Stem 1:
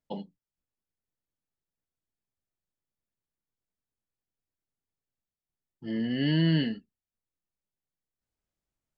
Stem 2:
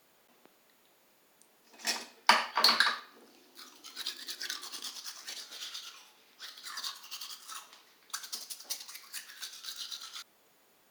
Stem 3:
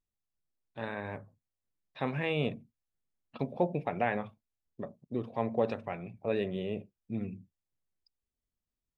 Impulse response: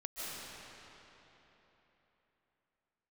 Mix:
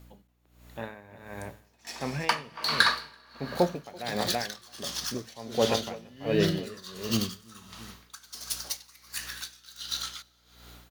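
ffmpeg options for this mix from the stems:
-filter_complex "[0:a]volume=-12dB[a];[1:a]bandreject=f=4.9k:w=28,volume=2.5dB,asplit=3[b][c][d];[c]volume=-14.5dB[e];[d]volume=-20dB[f];[2:a]volume=-0.5dB,asplit=2[g][h];[h]volume=-6.5dB[i];[3:a]atrim=start_sample=2205[j];[e][j]afir=irnorm=-1:irlink=0[k];[f][i]amix=inputs=2:normalize=0,aecho=0:1:334|668|1002:1|0.18|0.0324[l];[a][b][g][k][l]amix=inputs=5:normalize=0,dynaudnorm=f=160:g=9:m=8dB,aeval=exprs='val(0)+0.00316*(sin(2*PI*60*n/s)+sin(2*PI*2*60*n/s)/2+sin(2*PI*3*60*n/s)/3+sin(2*PI*4*60*n/s)/4+sin(2*PI*5*60*n/s)/5)':c=same,aeval=exprs='val(0)*pow(10,-20*(0.5-0.5*cos(2*PI*1.4*n/s))/20)':c=same"

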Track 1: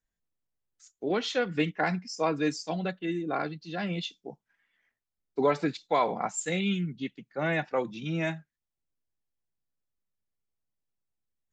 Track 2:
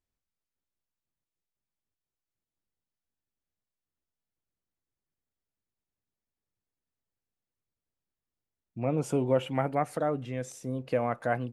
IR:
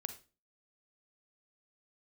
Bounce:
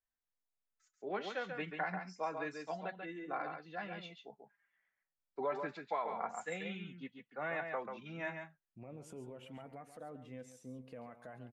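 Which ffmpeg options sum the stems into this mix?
-filter_complex "[0:a]acrossover=split=590 2200:gain=0.251 1 0.158[a][b][c];[a][b][c]amix=inputs=3:normalize=0,acompressor=threshold=-28dB:ratio=6,volume=-0.5dB,asplit=2[d][e];[e]volume=-6dB[f];[1:a]alimiter=level_in=0.5dB:limit=-24dB:level=0:latency=1:release=75,volume=-0.5dB,volume=-11dB,asplit=2[g][h];[h]volume=-11.5dB[i];[f][i]amix=inputs=2:normalize=0,aecho=0:1:138:1[j];[d][g][j]amix=inputs=3:normalize=0,flanger=delay=3.9:depth=1.4:regen=64:speed=0.29:shape=sinusoidal"

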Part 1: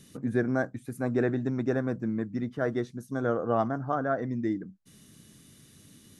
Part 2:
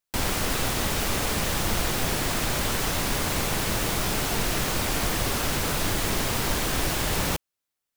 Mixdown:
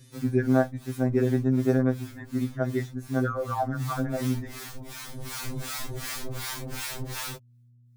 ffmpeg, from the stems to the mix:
-filter_complex "[0:a]volume=2dB[a];[1:a]equalizer=f=620:t=o:w=1.3:g=-4.5,acrossover=split=710[b][c];[b]aeval=exprs='val(0)*(1-1/2+1/2*cos(2*PI*2.7*n/s))':c=same[d];[c]aeval=exprs='val(0)*(1-1/2-1/2*cos(2*PI*2.7*n/s))':c=same[e];[d][e]amix=inputs=2:normalize=0,volume=-1dB,afade=t=in:st=3.64:d=0.39:silence=0.354813,afade=t=in:st=5.05:d=0.44:silence=0.473151[f];[a][f]amix=inputs=2:normalize=0,aeval=exprs='val(0)+0.00282*(sin(2*PI*60*n/s)+sin(2*PI*2*60*n/s)/2+sin(2*PI*3*60*n/s)/3+sin(2*PI*4*60*n/s)/4+sin(2*PI*5*60*n/s)/5)':c=same,bandreject=f=2.9k:w=12,afftfilt=real='re*2.45*eq(mod(b,6),0)':imag='im*2.45*eq(mod(b,6),0)':win_size=2048:overlap=0.75"

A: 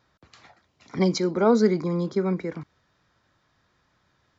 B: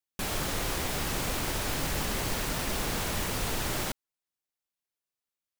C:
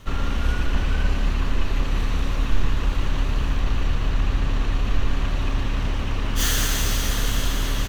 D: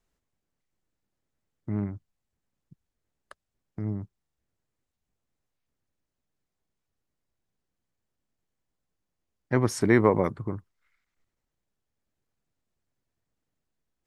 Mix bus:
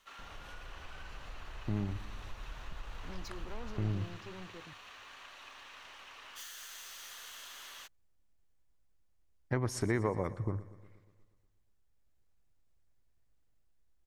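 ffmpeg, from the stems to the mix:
-filter_complex "[0:a]alimiter=limit=-15dB:level=0:latency=1,asoftclip=type=tanh:threshold=-27.5dB,adelay=2100,volume=-16dB[a];[1:a]lowpass=f=1.5k:w=0.5412,lowpass=f=1.5k:w=1.3066,equalizer=f=260:w=0.44:g=-10.5,volume=-11.5dB[b];[2:a]highpass=920,volume=-15dB[c];[3:a]acompressor=threshold=-31dB:ratio=2.5,volume=-0.5dB,asplit=2[d][e];[e]volume=-17.5dB[f];[b][c]amix=inputs=2:normalize=0,acompressor=threshold=-45dB:ratio=6,volume=0dB[g];[f]aecho=0:1:120|240|360|480|600|720|840|960|1080|1200:1|0.6|0.36|0.216|0.13|0.0778|0.0467|0.028|0.0168|0.0101[h];[a][d][g][h]amix=inputs=4:normalize=0,asubboost=boost=4:cutoff=84"

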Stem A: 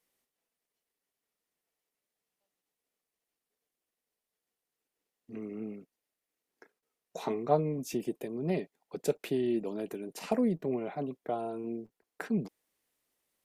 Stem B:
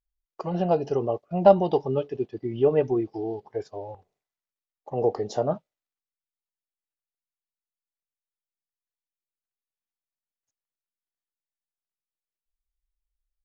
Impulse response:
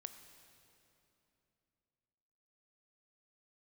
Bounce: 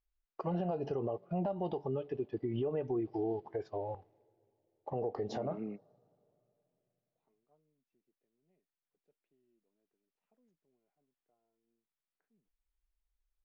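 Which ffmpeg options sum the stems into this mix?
-filter_complex "[0:a]lowpass=2.7k,volume=-1dB[a];[1:a]lowpass=3.1k,acompressor=threshold=-26dB:ratio=4,volume=-1dB,asplit=3[b][c][d];[c]volume=-17dB[e];[d]apad=whole_len=593032[f];[a][f]sidechaingate=range=-46dB:threshold=-60dB:ratio=16:detection=peak[g];[2:a]atrim=start_sample=2205[h];[e][h]afir=irnorm=-1:irlink=0[i];[g][b][i]amix=inputs=3:normalize=0,alimiter=level_in=3dB:limit=-24dB:level=0:latency=1:release=132,volume=-3dB"

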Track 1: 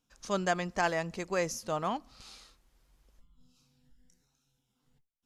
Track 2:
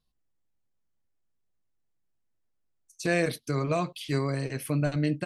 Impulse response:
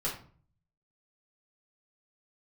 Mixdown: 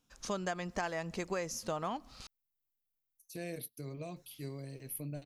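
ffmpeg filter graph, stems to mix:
-filter_complex "[0:a]volume=2.5dB,asplit=3[a][b][c];[a]atrim=end=2.27,asetpts=PTS-STARTPTS,afade=t=out:st=2.266:d=0.004:c=hsin[d];[b]atrim=start=2.27:end=4.16,asetpts=PTS-STARTPTS,volume=0[e];[c]atrim=start=4.16,asetpts=PTS-STARTPTS,afade=t=in:d=0.004:c=hsin[f];[d][e][f]concat=n=3:v=0:a=1[g];[1:a]equalizer=f=1.3k:t=o:w=0.96:g=-13.5,aexciter=amount=13.2:drive=5.1:freq=11k,adelay=300,volume=-14.5dB[h];[g][h]amix=inputs=2:normalize=0,acompressor=threshold=-33dB:ratio=6"

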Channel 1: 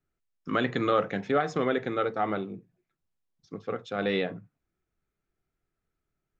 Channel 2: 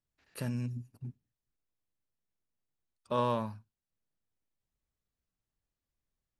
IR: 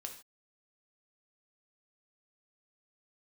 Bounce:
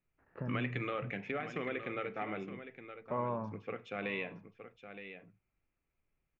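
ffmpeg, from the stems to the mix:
-filter_complex "[0:a]firequalizer=gain_entry='entry(1500,0);entry(2400,14);entry(3800,-6)':delay=0.05:min_phase=1,acompressor=threshold=-28dB:ratio=3,volume=-9.5dB,asplit=3[a][b][c];[b]volume=-7dB[d];[c]volume=-8.5dB[e];[1:a]lowpass=f=1.5k:w=0.5412,lowpass=f=1.5k:w=1.3066,acompressor=threshold=-53dB:ratio=1.5,volume=1.5dB,asplit=3[f][g][h];[g]volume=-4.5dB[i];[h]volume=-16dB[j];[2:a]atrim=start_sample=2205[k];[d][i]amix=inputs=2:normalize=0[l];[l][k]afir=irnorm=-1:irlink=0[m];[e][j]amix=inputs=2:normalize=0,aecho=0:1:917:1[n];[a][f][m][n]amix=inputs=4:normalize=0"

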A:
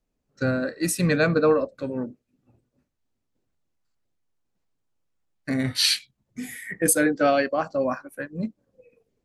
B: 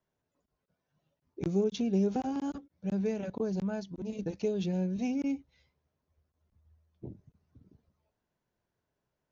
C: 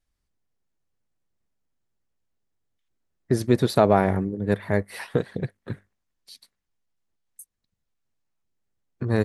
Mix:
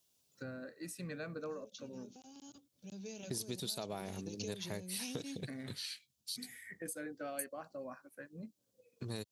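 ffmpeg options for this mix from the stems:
-filter_complex "[0:a]acompressor=threshold=-35dB:ratio=2,volume=-13.5dB,asplit=2[a][b];[1:a]acompressor=threshold=-44dB:ratio=2,volume=-3.5dB[c];[2:a]volume=-13.5dB[d];[b]apad=whole_len=410965[e];[c][e]sidechaincompress=threshold=-58dB:ratio=8:attack=16:release=1380[f];[f][d]amix=inputs=2:normalize=0,aexciter=amount=8.6:drive=4.7:freq=2.7k,acompressor=threshold=-37dB:ratio=8,volume=0dB[g];[a][g]amix=inputs=2:normalize=0,highpass=81"

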